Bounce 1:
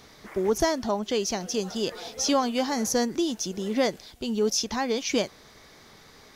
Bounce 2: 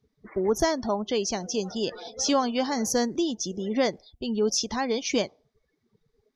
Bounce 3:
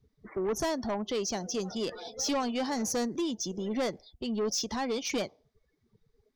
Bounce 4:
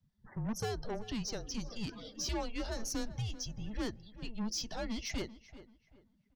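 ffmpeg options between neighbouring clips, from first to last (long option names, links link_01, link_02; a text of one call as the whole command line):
ffmpeg -i in.wav -af "afftdn=noise_reduction=32:noise_floor=-41" out.wav
ffmpeg -i in.wav -filter_complex "[0:a]acrossover=split=100|3400[link_01][link_02][link_03];[link_01]acompressor=mode=upward:threshold=-58dB:ratio=2.5[link_04];[link_04][link_02][link_03]amix=inputs=3:normalize=0,asoftclip=type=tanh:threshold=-23.5dB,volume=-2dB" out.wav
ffmpeg -i in.wav -filter_complex "[0:a]afreqshift=-220,asplit=2[link_01][link_02];[link_02]adelay=387,lowpass=frequency=2400:poles=1,volume=-15dB,asplit=2[link_03][link_04];[link_04]adelay=387,lowpass=frequency=2400:poles=1,volume=0.32,asplit=2[link_05][link_06];[link_06]adelay=387,lowpass=frequency=2400:poles=1,volume=0.32[link_07];[link_01][link_03][link_05][link_07]amix=inputs=4:normalize=0,volume=-6dB" out.wav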